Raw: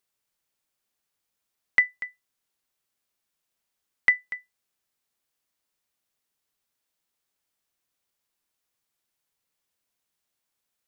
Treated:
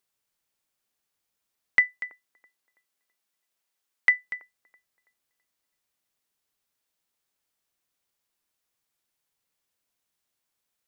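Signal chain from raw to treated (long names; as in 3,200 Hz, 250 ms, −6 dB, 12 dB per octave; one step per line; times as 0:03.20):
0:01.79–0:04.23: high-pass filter 120 Hz → 490 Hz 6 dB per octave
delay with a band-pass on its return 329 ms, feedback 33%, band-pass 560 Hz, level −20 dB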